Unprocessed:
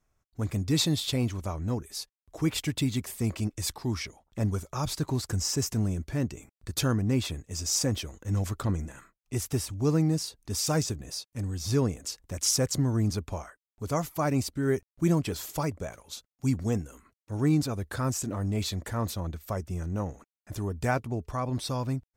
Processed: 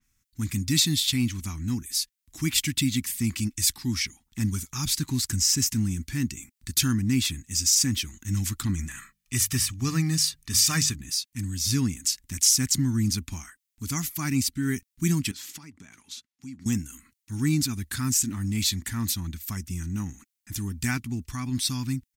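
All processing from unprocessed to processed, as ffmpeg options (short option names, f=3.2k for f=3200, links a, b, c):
-filter_complex "[0:a]asettb=1/sr,asplit=3[a][b][c];[a]atrim=end=8.774[d];[b]atrim=start=8.77:end=10.95,asetpts=PTS-STARTPTS,afade=t=in:d=0.004:c=qsin,afade=t=out:st=2.176:d=0.004:c=qsin,equalizer=f=1.3k:w=0.44:g=6.5,bandreject=f=50:t=h:w=6,bandreject=f=100:t=h:w=6,bandreject=f=150:t=h:w=6,bandreject=f=200:t=h:w=6,aecho=1:1:1.7:0.41,atrim=end_sample=96138[e];[c]atrim=start=10.946[f];[d][e]acrossfade=d=0.004:c1=hsin:c2=qsin[g];[g][f]acrossfade=d=0.004:c1=qsin:c2=hsin,asettb=1/sr,asplit=3[h][i][j];[h]atrim=end=15.314[k];[i]atrim=start=15.31:end=16.66,asetpts=PTS-STARTPTS,afade=t=in:d=0.004:c=qsin,afade=t=out:st=1.346:d=0.004:c=qsin,highpass=310,aemphasis=mode=reproduction:type=bsi,acompressor=threshold=-44dB:ratio=3:attack=3.2:release=140:knee=1:detection=peak[l];[j]atrim=start=16.656[m];[k][l]acrossfade=d=0.004:c1=hsin:c2=qsin[n];[n][m]acrossfade=d=0.004:c1=qsin:c2=hsin,firequalizer=gain_entry='entry(150,0);entry(250,5);entry(530,-29);entry(800,-11);entry(1900,6);entry(6600,11);entry(15000,13)':delay=0.05:min_phase=1,alimiter=level_in=8.5dB:limit=-1dB:release=50:level=0:latency=1,adynamicequalizer=threshold=0.0355:dfrequency=4600:dqfactor=0.7:tfrequency=4600:tqfactor=0.7:attack=5:release=100:ratio=0.375:range=2.5:mode=cutabove:tftype=highshelf,volume=-8dB"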